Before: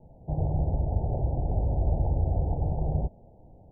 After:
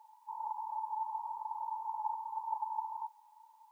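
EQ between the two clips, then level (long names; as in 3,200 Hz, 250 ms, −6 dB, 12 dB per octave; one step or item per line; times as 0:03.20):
linear-phase brick-wall high-pass 850 Hz
+16.5 dB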